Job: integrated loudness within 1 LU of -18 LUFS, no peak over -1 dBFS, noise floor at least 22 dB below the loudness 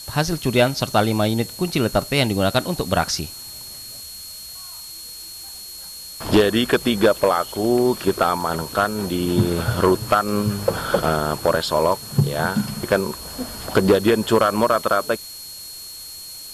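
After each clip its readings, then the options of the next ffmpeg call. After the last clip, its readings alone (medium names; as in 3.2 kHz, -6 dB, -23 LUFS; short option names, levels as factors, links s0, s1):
steady tone 4.3 kHz; tone level -37 dBFS; noise floor -37 dBFS; noise floor target -42 dBFS; loudness -20.0 LUFS; peak level -6.0 dBFS; loudness target -18.0 LUFS
-> -af "bandreject=f=4300:w=30"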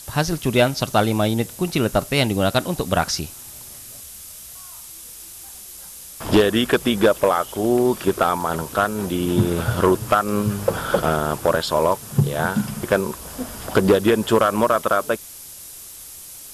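steady tone not found; noise floor -39 dBFS; noise floor target -42 dBFS
-> -af "afftdn=nr=6:nf=-39"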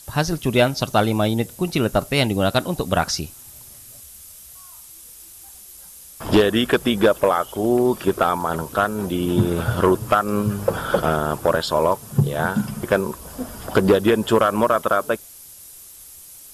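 noise floor -43 dBFS; loudness -20.0 LUFS; peak level -6.0 dBFS; loudness target -18.0 LUFS
-> -af "volume=1.26"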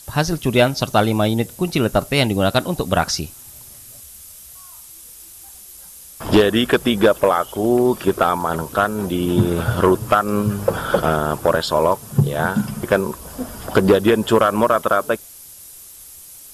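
loudness -18.0 LUFS; peak level -4.0 dBFS; noise floor -41 dBFS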